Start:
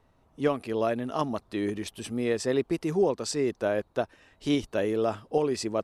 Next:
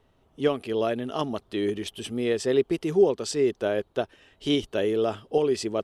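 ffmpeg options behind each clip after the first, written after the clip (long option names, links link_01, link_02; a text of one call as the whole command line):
ffmpeg -i in.wav -af "equalizer=frequency=400:width_type=o:width=0.33:gain=6,equalizer=frequency=1000:width_type=o:width=0.33:gain=-3,equalizer=frequency=3150:width_type=o:width=0.33:gain=9" out.wav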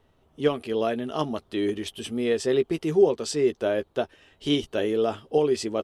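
ffmpeg -i in.wav -filter_complex "[0:a]asplit=2[link_01][link_02];[link_02]adelay=13,volume=-9.5dB[link_03];[link_01][link_03]amix=inputs=2:normalize=0" out.wav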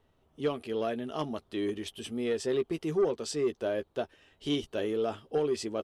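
ffmpeg -i in.wav -af "asoftclip=type=tanh:threshold=-14dB,volume=-5.5dB" out.wav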